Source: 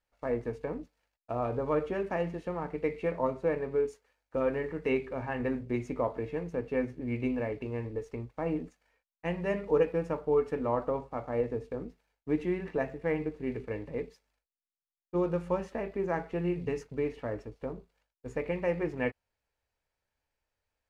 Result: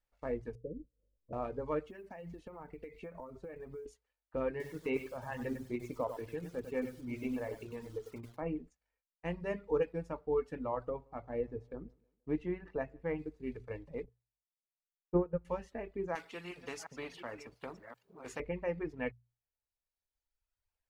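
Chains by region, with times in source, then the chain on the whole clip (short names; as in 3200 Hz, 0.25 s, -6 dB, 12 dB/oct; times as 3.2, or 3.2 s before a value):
0.55–1.33 steep low-pass 570 Hz 96 dB/oct + upward compressor, threshold -47 dBFS
1.87–3.86 compressor 20:1, threshold -35 dBFS + companded quantiser 8-bit
4.5–8.42 HPF 91 Hz + lo-fi delay 98 ms, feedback 35%, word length 8-bit, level -4 dB
10.9–13.19 LPF 2900 Hz 6 dB/oct + feedback echo 0.159 s, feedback 43%, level -19.5 dB
14.04–15.45 LPF 1100 Hz + transient shaper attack +8 dB, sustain -7 dB
16.15–18.4 reverse delay 0.359 s, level -12 dB + HPF 280 Hz + spectral compressor 2:1
whole clip: reverb removal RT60 1.6 s; low shelf 67 Hz +10.5 dB; notches 60/120 Hz; gain -5.5 dB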